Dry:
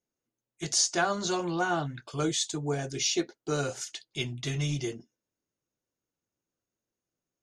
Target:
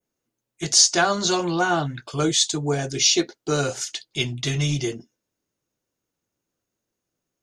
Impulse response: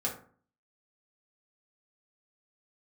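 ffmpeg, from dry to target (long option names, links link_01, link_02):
-af "acontrast=80,adynamicequalizer=threshold=0.0251:dfrequency=4500:dqfactor=0.97:tfrequency=4500:tqfactor=0.97:attack=5:release=100:ratio=0.375:range=2.5:mode=boostabove:tftype=bell"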